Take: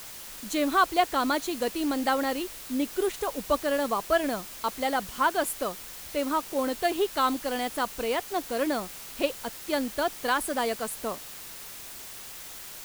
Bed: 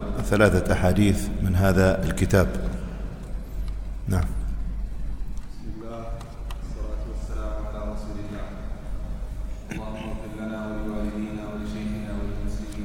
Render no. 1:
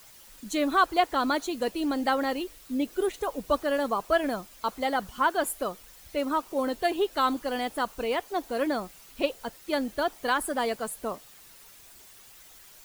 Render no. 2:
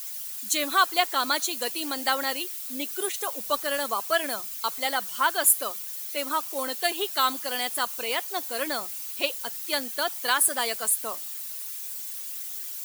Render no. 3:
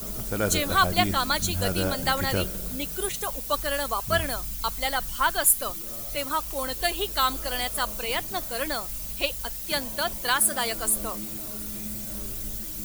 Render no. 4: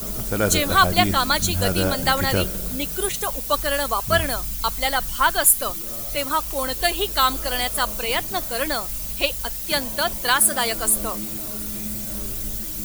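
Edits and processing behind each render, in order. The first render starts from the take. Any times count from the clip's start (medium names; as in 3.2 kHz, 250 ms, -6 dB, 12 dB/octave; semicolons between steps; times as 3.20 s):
noise reduction 11 dB, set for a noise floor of -42 dBFS
tilt EQ +4.5 dB/octave; hum notches 60/120/180 Hz
add bed -9 dB
trim +5 dB; peak limiter -2 dBFS, peak gain reduction 1.5 dB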